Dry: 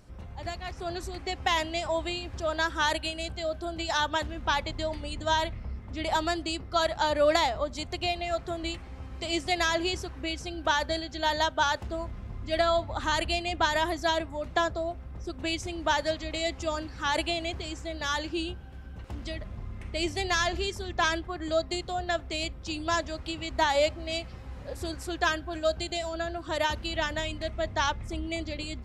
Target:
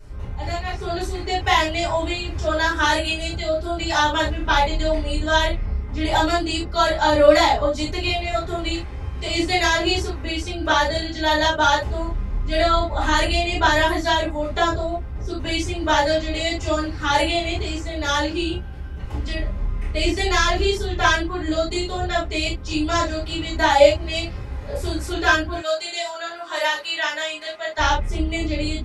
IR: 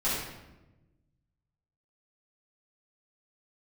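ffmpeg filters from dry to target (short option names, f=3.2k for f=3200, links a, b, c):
-filter_complex "[0:a]asettb=1/sr,asplit=3[a][b][c];[a]atrim=end=25.544[d];[b]atrim=start=25.54:end=27.78,asetpts=PTS-STARTPTS,afade=t=in:d=0.004:c=qsin,afade=t=out:st=2.236:d=0.004:c=qsin,highpass=760[e];[c]atrim=start=27.776[f];[d][e]acrossfade=d=0.004:c1=hsin:c2=qsin[g];[g][f]acrossfade=d=0.004:c1=qsin:c2=hsin[h];[1:a]atrim=start_sample=2205,afade=t=out:st=0.2:d=0.01,atrim=end_sample=9261,asetrate=83790,aresample=44100[i];[h][i]afir=irnorm=-1:irlink=0,volume=4.5dB"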